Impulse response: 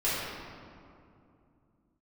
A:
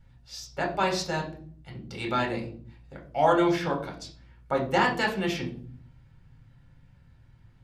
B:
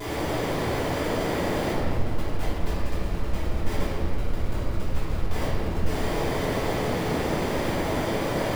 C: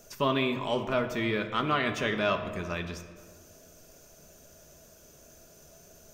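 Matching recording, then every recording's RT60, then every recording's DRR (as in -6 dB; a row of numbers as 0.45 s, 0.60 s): B; 0.50 s, 2.6 s, no single decay rate; 0.0 dB, -12.0 dB, 4.5 dB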